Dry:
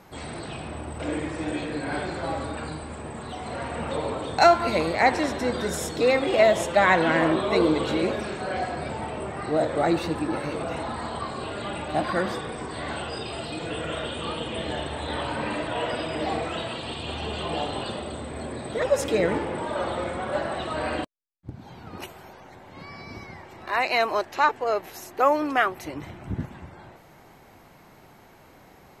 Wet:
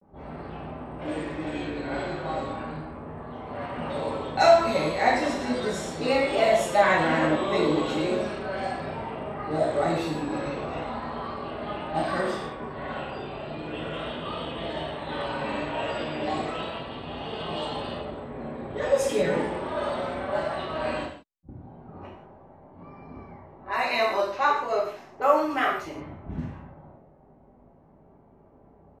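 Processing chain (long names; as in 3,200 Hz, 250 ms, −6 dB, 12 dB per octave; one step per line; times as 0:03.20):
low-pass that shuts in the quiet parts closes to 540 Hz, open at −22 dBFS
reverb whose tail is shaped and stops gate 210 ms falling, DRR −5.5 dB
pitch vibrato 0.36 Hz 54 cents
level −8 dB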